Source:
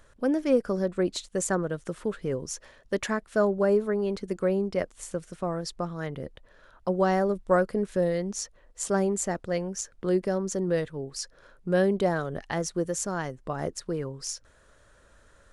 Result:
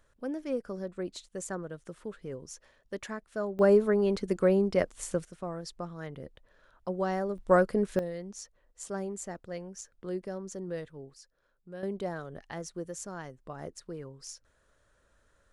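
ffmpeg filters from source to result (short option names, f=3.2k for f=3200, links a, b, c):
-af "asetnsamples=n=441:p=0,asendcmd='3.59 volume volume 1.5dB;5.25 volume volume -7dB;7.38 volume volume 0dB;7.99 volume volume -10.5dB;11.14 volume volume -19.5dB;11.83 volume volume -10dB',volume=-10dB"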